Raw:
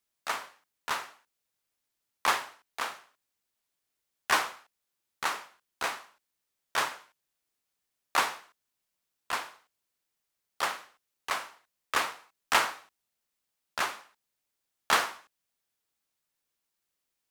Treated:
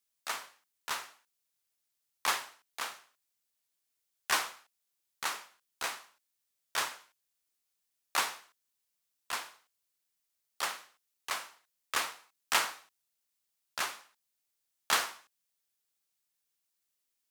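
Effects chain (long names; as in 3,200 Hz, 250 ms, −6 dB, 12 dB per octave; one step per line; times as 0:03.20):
high-shelf EQ 2,800 Hz +9 dB
level −7 dB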